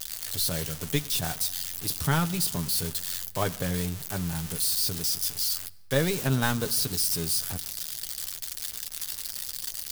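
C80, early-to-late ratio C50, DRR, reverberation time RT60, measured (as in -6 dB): 21.5 dB, 20.5 dB, 8.5 dB, not exponential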